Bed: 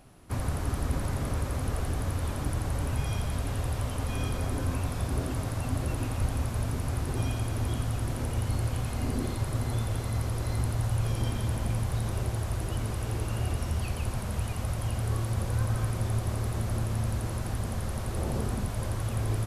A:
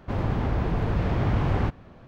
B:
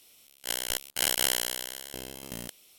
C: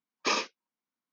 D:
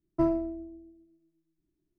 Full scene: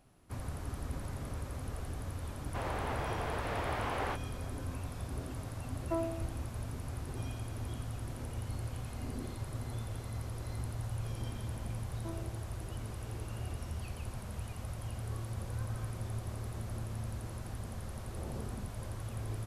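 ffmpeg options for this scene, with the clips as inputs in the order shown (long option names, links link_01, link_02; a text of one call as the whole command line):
ffmpeg -i bed.wav -i cue0.wav -i cue1.wav -i cue2.wav -i cue3.wav -filter_complex "[4:a]asplit=2[link_01][link_02];[0:a]volume=-10dB[link_03];[1:a]highpass=540[link_04];[link_01]highpass=frequency=410:width=0.5412,highpass=frequency=410:width=1.3066[link_05];[link_02]tiltshelf=frequency=970:gain=-4.5[link_06];[link_04]atrim=end=2.07,asetpts=PTS-STARTPTS,volume=-2.5dB,afade=type=in:duration=0.004:curve=hsin,afade=type=out:start_time=2.066:duration=0.004:curve=hsin,adelay=2460[link_07];[link_05]atrim=end=1.98,asetpts=PTS-STARTPTS,volume=-4dB,afade=type=in:duration=0.004:curve=hsin,afade=type=out:start_time=1.976:duration=0.004:curve=hsin,adelay=5720[link_08];[link_06]atrim=end=1.98,asetpts=PTS-STARTPTS,volume=-18dB,afade=type=in:duration=0.004:curve=hsin,afade=type=out:start_time=1.976:duration=0.004:curve=hsin,adelay=523026S[link_09];[link_03][link_07][link_08][link_09]amix=inputs=4:normalize=0" out.wav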